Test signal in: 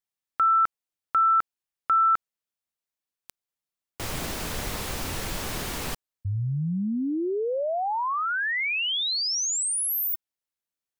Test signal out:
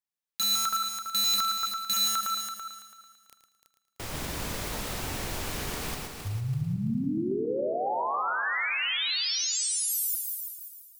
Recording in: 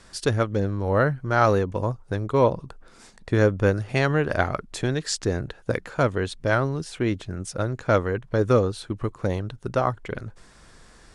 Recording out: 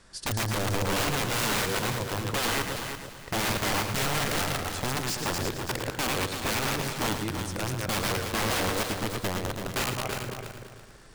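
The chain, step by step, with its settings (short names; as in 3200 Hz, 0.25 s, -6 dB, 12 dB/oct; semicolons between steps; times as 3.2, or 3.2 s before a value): reverse delay 0.138 s, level -4 dB; wrapped overs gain 18 dB; multi-head echo 0.111 s, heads first and third, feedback 42%, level -8 dB; gain -5 dB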